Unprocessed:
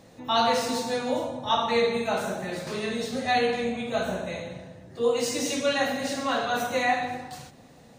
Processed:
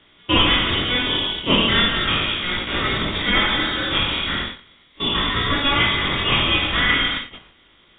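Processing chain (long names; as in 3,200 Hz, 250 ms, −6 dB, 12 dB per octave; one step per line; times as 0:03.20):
compressor on every frequency bin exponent 0.6
noise gate −27 dBFS, range −19 dB
spectral tilt +4.5 dB per octave
frequency shifter +61 Hz
chorus effect 0.37 Hz, delay 17 ms, depth 7.7 ms
voice inversion scrambler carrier 4,000 Hz
level +6 dB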